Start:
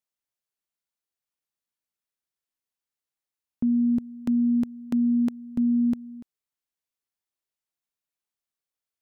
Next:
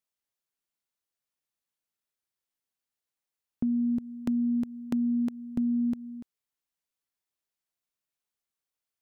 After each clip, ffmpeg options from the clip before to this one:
-af "acompressor=threshold=-25dB:ratio=6"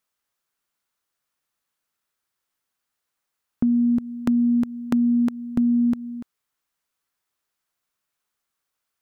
-af "equalizer=f=1.3k:w=1.5:g=6.5,volume=7.5dB"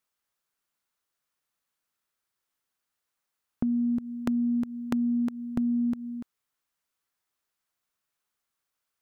-af "acompressor=threshold=-23dB:ratio=2.5,volume=-3dB"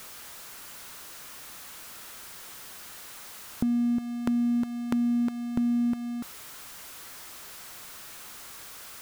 -af "aeval=exprs='val(0)+0.5*0.0133*sgn(val(0))':c=same"

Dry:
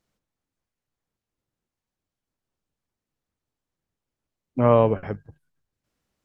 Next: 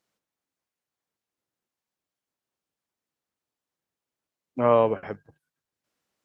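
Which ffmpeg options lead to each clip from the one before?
-af "highpass=f=390:p=1"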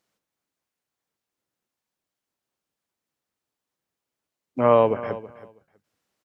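-af "aecho=1:1:324|648:0.158|0.0254,volume=2.5dB"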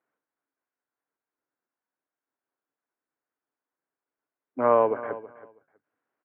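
-af "highpass=170,equalizer=f=190:t=q:w=4:g=-9,equalizer=f=280:t=q:w=4:g=5,equalizer=f=430:t=q:w=4:g=3,equalizer=f=700:t=q:w=4:g=3,equalizer=f=1k:t=q:w=4:g=4,equalizer=f=1.5k:t=q:w=4:g=7,lowpass=f=2.2k:w=0.5412,lowpass=f=2.2k:w=1.3066,volume=-5.5dB"

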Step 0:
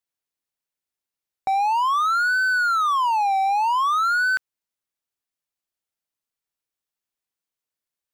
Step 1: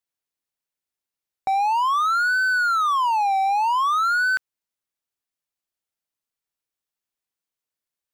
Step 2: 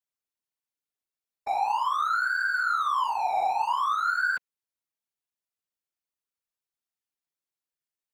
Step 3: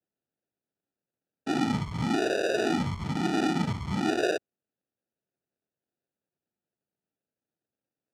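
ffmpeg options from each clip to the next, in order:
-af anull
-filter_complex "[0:a]acrossover=split=220|1700|4100[a][b][c][d];[d]alimiter=level_in=16dB:limit=-24dB:level=0:latency=1,volume=-16dB[e];[a][b][c][e]amix=inputs=4:normalize=0,afftfilt=real='hypot(re,im)*cos(2*PI*random(0))':imag='hypot(re,im)*sin(2*PI*random(1))':win_size=512:overlap=0.75"
-af "acrusher=samples=41:mix=1:aa=0.000001,highpass=120,lowpass=5.9k"

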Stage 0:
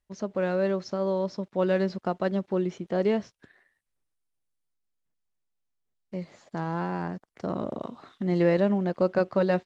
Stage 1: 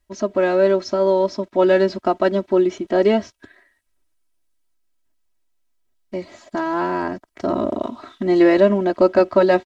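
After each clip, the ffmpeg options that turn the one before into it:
-af "aecho=1:1:3.1:0.94,volume=7.5dB"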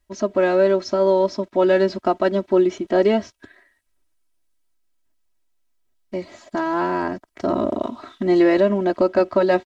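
-af "alimiter=limit=-7dB:level=0:latency=1:release=290"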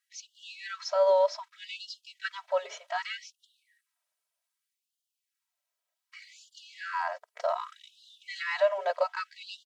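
-af "afftfilt=real='re*gte(b*sr/1024,420*pow(2800/420,0.5+0.5*sin(2*PI*0.65*pts/sr)))':imag='im*gte(b*sr/1024,420*pow(2800/420,0.5+0.5*sin(2*PI*0.65*pts/sr)))':win_size=1024:overlap=0.75,volume=-3.5dB"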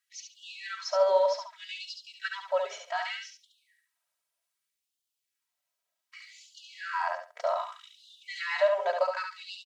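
-af "aecho=1:1:70|140|210:0.562|0.101|0.0182"

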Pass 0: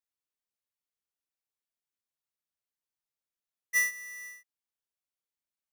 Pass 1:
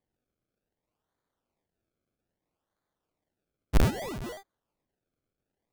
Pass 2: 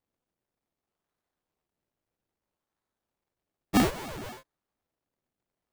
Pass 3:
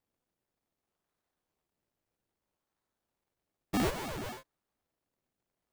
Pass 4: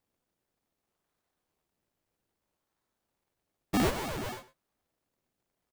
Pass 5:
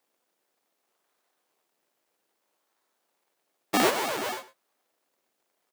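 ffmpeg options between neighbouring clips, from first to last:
-af "acrusher=samples=32:mix=1:aa=0.000001:lfo=1:lforange=32:lforate=0.62,volume=7dB"
-af "aeval=exprs='val(0)*sgn(sin(2*PI*250*n/s))':c=same,volume=-2.5dB"
-af "alimiter=level_in=4dB:limit=-24dB:level=0:latency=1:release=39,volume=-4dB"
-filter_complex "[0:a]asplit=2[a][b];[b]adelay=105,volume=-16dB,highshelf=f=4k:g=-2.36[c];[a][c]amix=inputs=2:normalize=0,volume=3dB"
-af "highpass=390,volume=8dB"

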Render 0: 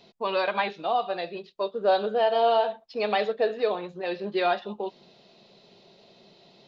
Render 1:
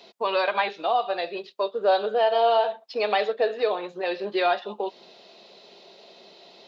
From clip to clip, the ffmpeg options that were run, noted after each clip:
-filter_complex "[0:a]highpass=360,asplit=2[a][b];[b]acompressor=threshold=-34dB:ratio=6,volume=1.5dB[c];[a][c]amix=inputs=2:normalize=0"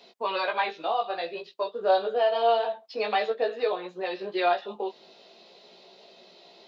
-af "flanger=delay=16:depth=2.3:speed=0.5"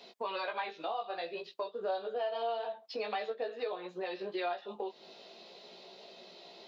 -af "acompressor=threshold=-38dB:ratio=2.5"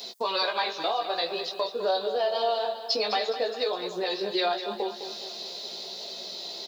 -af "aexciter=amount=4:drive=7:freq=3.8k,aecho=1:1:207|414|621|828|1035|1242:0.282|0.147|0.0762|0.0396|0.0206|0.0107,volume=8dB"

